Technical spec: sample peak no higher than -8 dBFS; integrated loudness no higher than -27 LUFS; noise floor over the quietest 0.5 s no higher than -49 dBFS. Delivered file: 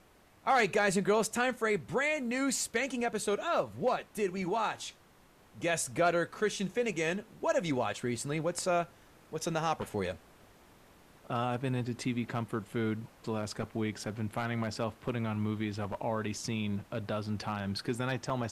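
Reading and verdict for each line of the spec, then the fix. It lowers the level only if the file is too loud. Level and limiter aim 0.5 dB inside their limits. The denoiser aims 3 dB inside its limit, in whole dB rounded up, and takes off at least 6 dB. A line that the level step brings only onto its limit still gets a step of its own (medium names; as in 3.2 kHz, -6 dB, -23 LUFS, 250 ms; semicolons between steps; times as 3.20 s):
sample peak -17.0 dBFS: pass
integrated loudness -33.0 LUFS: pass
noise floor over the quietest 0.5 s -61 dBFS: pass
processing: none needed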